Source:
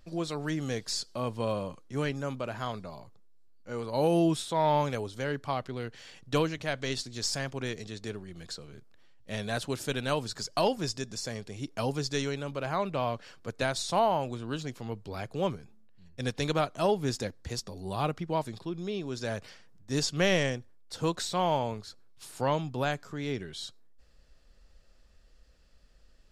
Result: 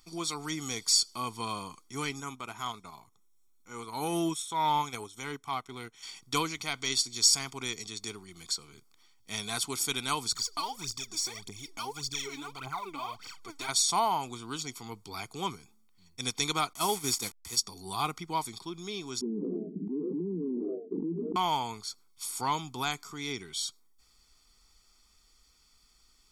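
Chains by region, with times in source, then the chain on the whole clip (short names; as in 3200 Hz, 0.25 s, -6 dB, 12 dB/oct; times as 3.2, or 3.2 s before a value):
2.2–6.03 Butterworth band-stop 4600 Hz, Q 6.3 + transient shaper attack -5 dB, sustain -9 dB
10.32–13.69 high shelf 5600 Hz -7 dB + phaser 1.7 Hz, delay 3.7 ms, feedback 80% + compressor 2:1, threshold -39 dBFS
16.73–17.57 delta modulation 64 kbps, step -38 dBFS + gate -35 dBFS, range -7 dB + high shelf 9400 Hz +7 dB
19.21–21.36 Chebyshev band-pass 170–430 Hz, order 5 + frequency-shifting echo 96 ms, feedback 42%, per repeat +68 Hz, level -21.5 dB + fast leveller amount 100%
whole clip: tone controls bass -13 dB, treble +11 dB; comb 0.9 ms, depth 96%; gain -2 dB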